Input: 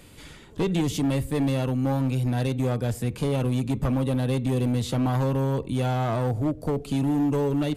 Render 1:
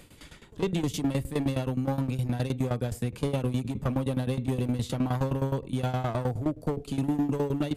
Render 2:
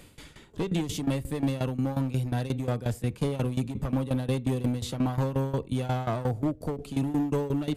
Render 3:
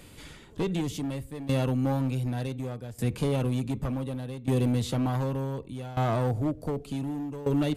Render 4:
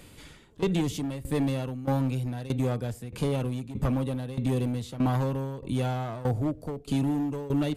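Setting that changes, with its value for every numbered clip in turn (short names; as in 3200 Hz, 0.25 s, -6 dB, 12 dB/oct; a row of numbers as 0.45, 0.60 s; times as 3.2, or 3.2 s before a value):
tremolo, rate: 9.6, 5.6, 0.67, 1.6 Hz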